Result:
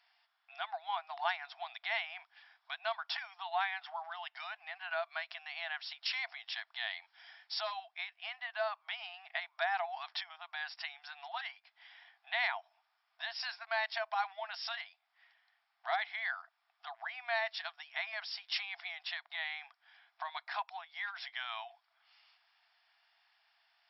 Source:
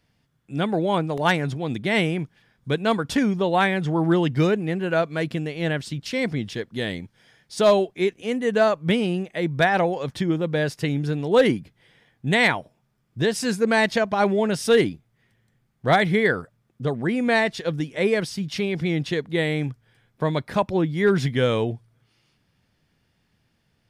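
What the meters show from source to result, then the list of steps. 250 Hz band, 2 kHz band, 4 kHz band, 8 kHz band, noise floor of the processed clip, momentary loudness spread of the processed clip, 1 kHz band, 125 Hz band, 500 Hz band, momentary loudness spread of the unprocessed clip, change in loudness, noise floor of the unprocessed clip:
under -40 dB, -11.5 dB, -9.0 dB, under -30 dB, -80 dBFS, 10 LU, -12.0 dB, under -40 dB, -23.5 dB, 10 LU, -16.0 dB, -69 dBFS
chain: compression 6:1, threshold -31 dBFS, peak gain reduction 17.5 dB; brick-wall FIR band-pass 650–5600 Hz; trim +1.5 dB

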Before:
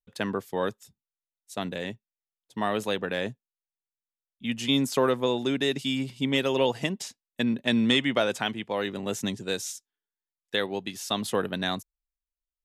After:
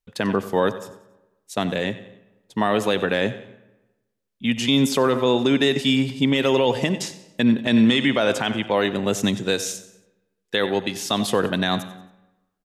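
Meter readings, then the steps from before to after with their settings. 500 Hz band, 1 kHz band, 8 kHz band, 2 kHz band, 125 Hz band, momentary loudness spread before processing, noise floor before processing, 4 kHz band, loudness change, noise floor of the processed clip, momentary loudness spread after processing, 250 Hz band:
+6.5 dB, +6.5 dB, +6.0 dB, +6.0 dB, +8.0 dB, 12 LU, under -85 dBFS, +5.0 dB, +6.5 dB, -76 dBFS, 10 LU, +8.0 dB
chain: treble shelf 6.6 kHz -5 dB; feedback delay 92 ms, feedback 41%, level -17 dB; algorithmic reverb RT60 1.1 s, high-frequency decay 0.7×, pre-delay 20 ms, DRR 17.5 dB; peak limiter -17.5 dBFS, peak gain reduction 7 dB; trim +9 dB

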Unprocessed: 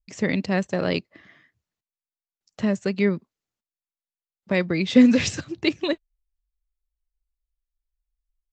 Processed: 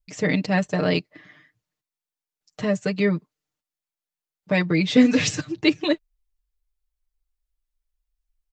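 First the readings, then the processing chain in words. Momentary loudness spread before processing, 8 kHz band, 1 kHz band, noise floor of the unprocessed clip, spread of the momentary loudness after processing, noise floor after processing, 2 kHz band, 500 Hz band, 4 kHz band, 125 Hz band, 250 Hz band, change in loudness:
12 LU, +3.0 dB, +3.0 dB, under -85 dBFS, 9 LU, under -85 dBFS, +2.5 dB, +1.0 dB, +2.5 dB, +3.0 dB, 0.0 dB, +0.5 dB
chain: comb 6.6 ms, depth 85%

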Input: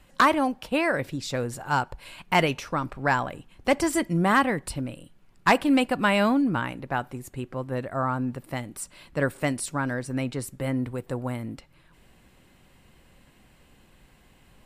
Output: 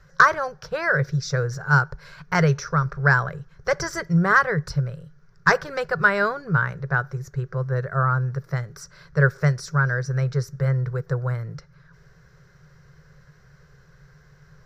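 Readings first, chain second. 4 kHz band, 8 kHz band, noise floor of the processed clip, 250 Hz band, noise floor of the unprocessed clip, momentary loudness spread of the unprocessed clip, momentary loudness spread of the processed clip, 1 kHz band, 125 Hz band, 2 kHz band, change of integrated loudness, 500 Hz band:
-3.5 dB, -2.0 dB, -54 dBFS, -3.0 dB, -58 dBFS, 14 LU, 12 LU, +1.5 dB, +10.5 dB, +7.0 dB, +3.5 dB, +1.0 dB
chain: FFT filter 100 Hz 0 dB, 150 Hz +13 dB, 270 Hz -30 dB, 410 Hz +4 dB, 820 Hz -9 dB, 1.5 kHz +9 dB, 2.8 kHz -16 dB, 5.8 kHz +7 dB, 8.7 kHz -22 dB, 14 kHz -11 dB; trim +2.5 dB

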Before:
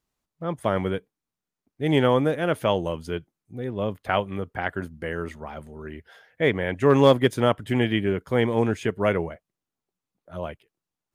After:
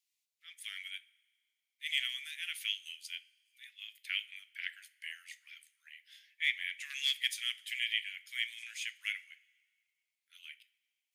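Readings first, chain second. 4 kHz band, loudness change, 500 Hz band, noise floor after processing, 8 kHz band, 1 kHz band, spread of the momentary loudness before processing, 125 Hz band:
0.0 dB, -12.5 dB, under -40 dB, under -85 dBFS, no reading, under -35 dB, 16 LU, under -40 dB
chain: steep high-pass 2.1 kHz 48 dB/octave; two-slope reverb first 0.36 s, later 1.9 s, from -18 dB, DRR 12.5 dB

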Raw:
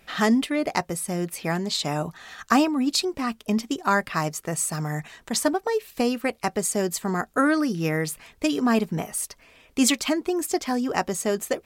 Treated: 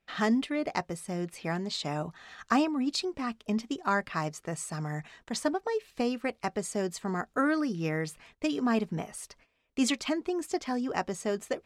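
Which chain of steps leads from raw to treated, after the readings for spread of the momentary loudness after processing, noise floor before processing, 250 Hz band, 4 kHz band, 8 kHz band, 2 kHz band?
9 LU, -58 dBFS, -6.0 dB, -8.0 dB, -12.0 dB, -6.5 dB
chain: gate -49 dBFS, range -15 dB; distance through air 58 m; trim -6 dB

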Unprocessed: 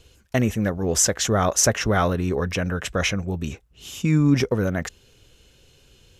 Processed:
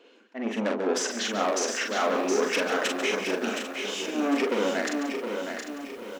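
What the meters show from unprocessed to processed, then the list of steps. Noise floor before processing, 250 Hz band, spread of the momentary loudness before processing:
-57 dBFS, -5.5 dB, 12 LU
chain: in parallel at -4 dB: overload inside the chain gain 17.5 dB; on the sum: low-pass that closes with the level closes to 2.5 kHz, closed at -13.5 dBFS; slow attack 238 ms; saturation -21.5 dBFS, distortion -8 dB; level-controlled noise filter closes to 1.9 kHz, open at -25 dBFS; brick-wall FIR high-pass 210 Hz; on a send: multi-tap echo 43/142/179/717 ms -4/-10.5/-13.5/-6.5 dB; on the sum: bit-crushed delay 751 ms, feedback 55%, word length 8-bit, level -8.5 dB

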